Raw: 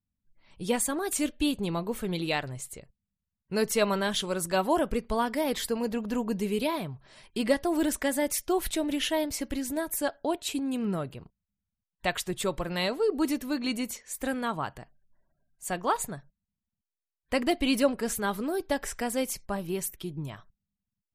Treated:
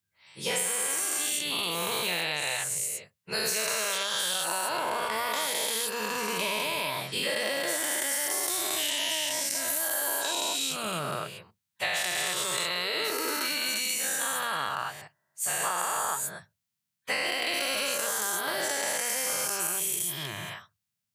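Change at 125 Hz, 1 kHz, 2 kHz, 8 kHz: −7.0, +1.0, +6.0, +8.5 decibels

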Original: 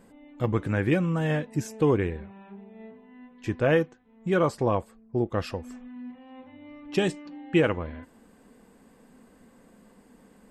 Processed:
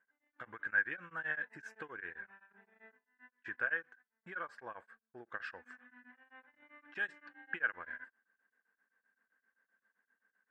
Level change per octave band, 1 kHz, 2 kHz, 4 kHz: −14.5, −1.0, −19.5 decibels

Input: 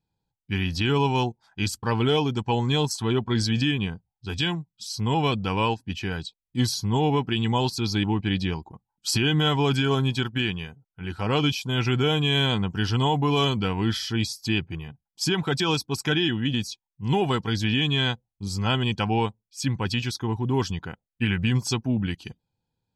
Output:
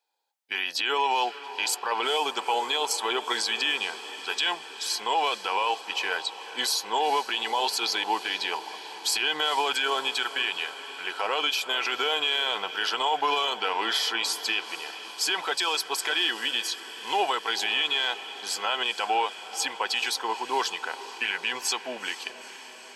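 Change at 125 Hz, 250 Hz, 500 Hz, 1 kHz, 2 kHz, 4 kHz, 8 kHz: below −40 dB, −18.0 dB, −4.5 dB, +3.0 dB, +3.0 dB, +2.0 dB, +3.5 dB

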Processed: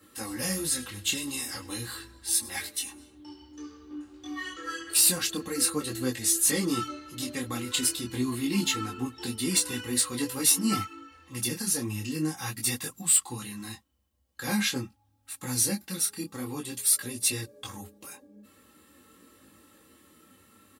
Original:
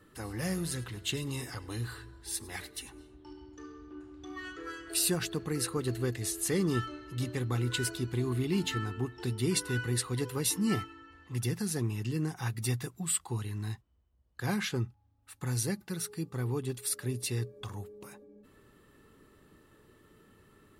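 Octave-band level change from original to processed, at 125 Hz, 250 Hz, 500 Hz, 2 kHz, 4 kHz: −5.5, +3.0, −1.5, +3.5, +7.5 decibels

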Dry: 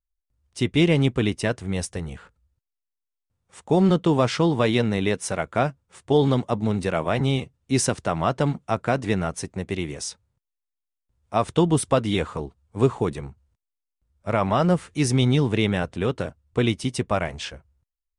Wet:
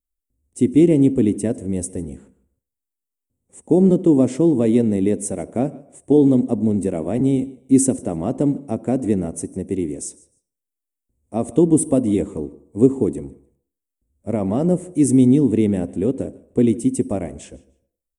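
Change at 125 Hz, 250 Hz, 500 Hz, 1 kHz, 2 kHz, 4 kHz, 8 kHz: 0.0 dB, +8.0 dB, +3.0 dB, −8.0 dB, below −10 dB, below −10 dB, +4.0 dB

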